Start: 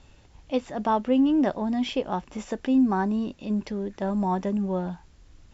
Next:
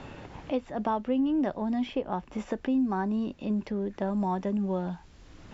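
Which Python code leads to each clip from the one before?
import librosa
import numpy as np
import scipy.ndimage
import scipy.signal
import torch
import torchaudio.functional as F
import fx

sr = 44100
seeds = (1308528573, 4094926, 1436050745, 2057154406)

y = fx.high_shelf(x, sr, hz=5900.0, db=-11.5)
y = fx.band_squash(y, sr, depth_pct=70)
y = y * 10.0 ** (-4.0 / 20.0)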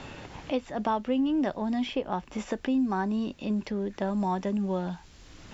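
y = fx.high_shelf(x, sr, hz=2200.0, db=8.5)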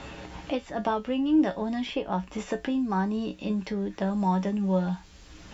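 y = fx.comb_fb(x, sr, f0_hz=62.0, decay_s=0.18, harmonics='odd', damping=0.0, mix_pct=80)
y = y * 10.0 ** (8.0 / 20.0)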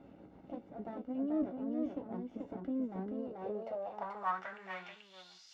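y = fx.lower_of_two(x, sr, delay_ms=1.4)
y = y + 10.0 ** (-4.0 / 20.0) * np.pad(y, (int(435 * sr / 1000.0), 0))[:len(y)]
y = fx.filter_sweep_bandpass(y, sr, from_hz=290.0, to_hz=5000.0, start_s=3.07, end_s=5.45, q=3.8)
y = y * 10.0 ** (1.5 / 20.0)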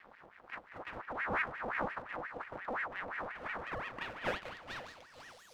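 y = np.maximum(x, 0.0)
y = fx.echo_feedback(y, sr, ms=500, feedback_pct=34, wet_db=-15.0)
y = fx.ring_lfo(y, sr, carrier_hz=1200.0, swing_pct=60, hz=5.7)
y = y * 10.0 ** (4.0 / 20.0)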